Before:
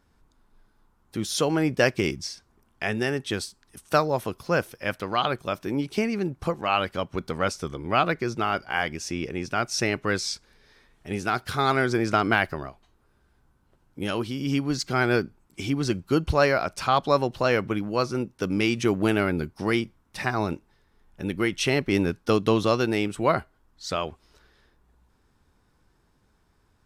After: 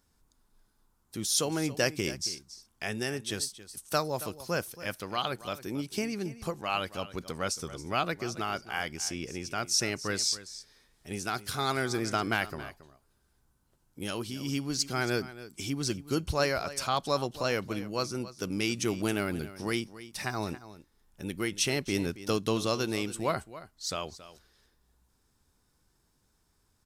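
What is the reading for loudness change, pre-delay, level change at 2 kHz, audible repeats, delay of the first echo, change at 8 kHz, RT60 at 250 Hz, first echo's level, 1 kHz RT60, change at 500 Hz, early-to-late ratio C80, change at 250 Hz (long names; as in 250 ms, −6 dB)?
−6.0 dB, no reverb audible, −7.0 dB, 1, 275 ms, +3.5 dB, no reverb audible, −15.5 dB, no reverb audible, −8.0 dB, no reverb audible, −7.5 dB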